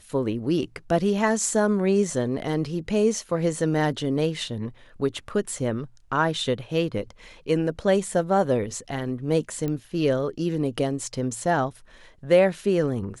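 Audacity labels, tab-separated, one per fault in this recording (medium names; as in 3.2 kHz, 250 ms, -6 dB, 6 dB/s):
9.680000	9.680000	pop -17 dBFS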